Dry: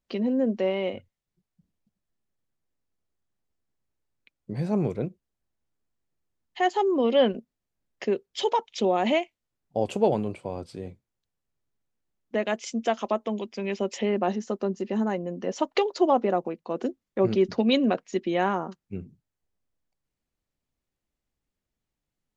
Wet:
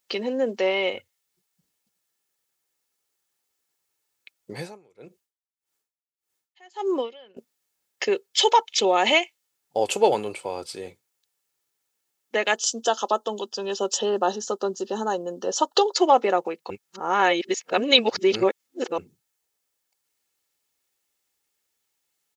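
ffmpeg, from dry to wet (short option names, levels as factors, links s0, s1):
-filter_complex "[0:a]asettb=1/sr,asplit=3[s0][s1][s2];[s0]atrim=end=4.584[s3];[s1]atrim=start=4.58:end=7.37,asetpts=PTS-STARTPTS,afade=t=in:d=0.004:c=qsin,afade=t=out:st=2.786:d=0.004:c=qsin,aeval=exprs='val(0)*pow(10,-33*(0.5-0.5*cos(2*PI*1.7*n/s))/20)':c=same[s4];[s2]atrim=start=7.366[s5];[s3][s4]acrossfade=d=0.004:c1=hsin:c2=qsin[s6];[s6][s5]acrossfade=d=0.004:c1=qsin:c2=hsin,asettb=1/sr,asplit=3[s7][s8][s9];[s7]atrim=end=12.554[s10];[s8]atrim=start=12.55:end=15.96,asetpts=PTS-STARTPTS,afade=t=in:d=0.004:c=qsin,afade=t=out:st=3.406:d=0.004:c=qsin,asuperstop=centerf=2200:order=4:qfactor=1.4[s11];[s9]atrim=start=15.956[s12];[s10][s11]acrossfade=d=0.004:c1=hsin:c2=qsin[s13];[s13][s12]acrossfade=d=0.004:c1=qsin:c2=hsin,asplit=3[s14][s15][s16];[s14]atrim=end=16.702[s17];[s15]atrim=start=16.698:end=18.982,asetpts=PTS-STARTPTS,areverse[s18];[s16]atrim=start=18.978[s19];[s17][s18]acrossfade=d=0.004:c1=hsin:c2=hsin[s20];[s20][s19]acrossfade=d=0.004:c1=hsin:c2=hsin,highpass=f=1000:p=1,highshelf=f=4900:g=8.5,aecho=1:1:2.3:0.34,volume=2.82"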